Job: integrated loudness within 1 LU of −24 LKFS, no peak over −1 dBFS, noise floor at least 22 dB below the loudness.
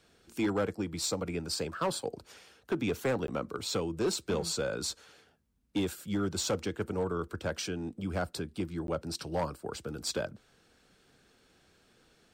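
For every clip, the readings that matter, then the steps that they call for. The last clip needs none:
share of clipped samples 0.8%; peaks flattened at −24.0 dBFS; number of dropouts 2; longest dropout 12 ms; integrated loudness −34.0 LKFS; sample peak −24.0 dBFS; target loudness −24.0 LKFS
→ clipped peaks rebuilt −24 dBFS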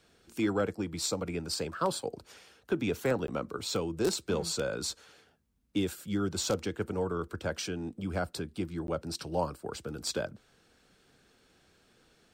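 share of clipped samples 0.0%; number of dropouts 2; longest dropout 12 ms
→ repair the gap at 0:03.27/0:08.87, 12 ms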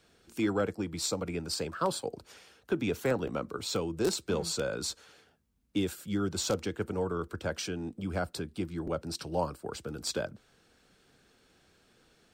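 number of dropouts 0; integrated loudness −33.5 LKFS; sample peak −15.0 dBFS; target loudness −24.0 LKFS
→ level +9.5 dB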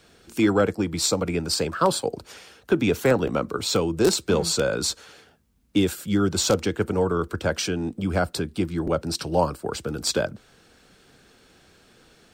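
integrated loudness −24.0 LKFS; sample peak −5.5 dBFS; background noise floor −57 dBFS

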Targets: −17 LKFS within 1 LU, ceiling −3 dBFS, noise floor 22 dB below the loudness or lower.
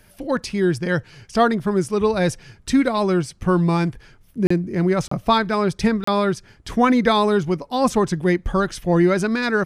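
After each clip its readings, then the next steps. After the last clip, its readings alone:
number of dropouts 3; longest dropout 34 ms; integrated loudness −20.5 LKFS; sample peak −3.0 dBFS; target loudness −17.0 LKFS
→ repair the gap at 0:04.47/0:05.08/0:06.04, 34 ms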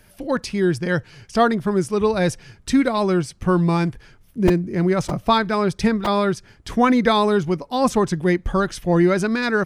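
number of dropouts 0; integrated loudness −20.0 LKFS; sample peak −3.0 dBFS; target loudness −17.0 LKFS
→ level +3 dB
brickwall limiter −3 dBFS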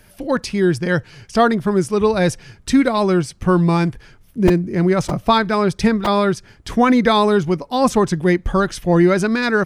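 integrated loudness −17.5 LKFS; sample peak −3.0 dBFS; background noise floor −50 dBFS

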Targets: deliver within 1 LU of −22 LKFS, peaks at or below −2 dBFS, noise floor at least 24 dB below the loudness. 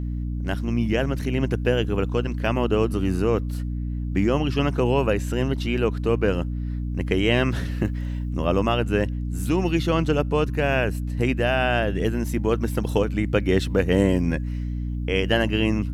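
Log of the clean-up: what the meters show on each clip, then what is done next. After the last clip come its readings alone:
mains hum 60 Hz; hum harmonics up to 300 Hz; level of the hum −25 dBFS; integrated loudness −23.5 LKFS; sample peak −5.5 dBFS; target loudness −22.0 LKFS
→ hum removal 60 Hz, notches 5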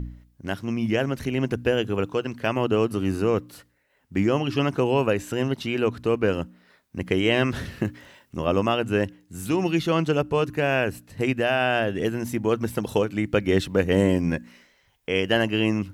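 mains hum none found; integrated loudness −24.5 LKFS; sample peak −7.0 dBFS; target loudness −22.0 LKFS
→ level +2.5 dB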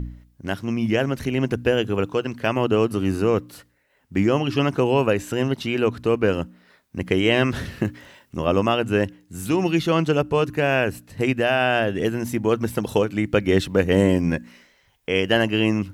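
integrated loudness −22.0 LKFS; sample peak −4.5 dBFS; background noise floor −63 dBFS

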